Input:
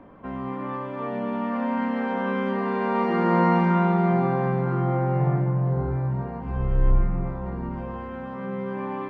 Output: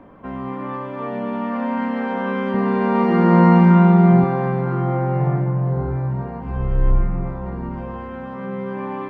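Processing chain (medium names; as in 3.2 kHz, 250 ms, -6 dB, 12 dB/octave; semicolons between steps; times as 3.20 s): 2.54–4.24 s: peaking EQ 83 Hz +12.5 dB 2.6 oct; trim +3 dB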